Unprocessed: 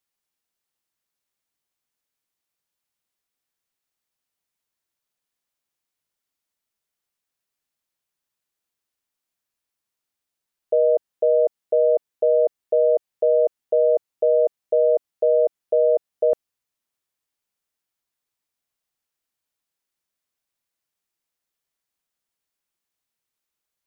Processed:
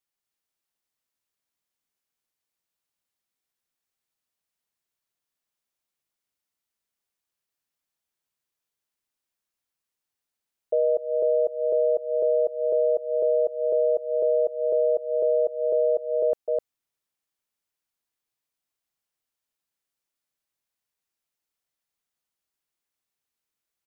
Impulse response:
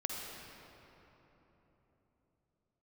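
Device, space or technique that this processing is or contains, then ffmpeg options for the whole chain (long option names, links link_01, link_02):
ducked delay: -filter_complex "[0:a]asplit=3[link_01][link_02][link_03];[link_02]adelay=255,volume=-2dB[link_04];[link_03]apad=whole_len=1063834[link_05];[link_04][link_05]sidechaincompress=threshold=-34dB:ratio=8:attack=16:release=145[link_06];[link_01][link_06]amix=inputs=2:normalize=0,volume=-4.5dB"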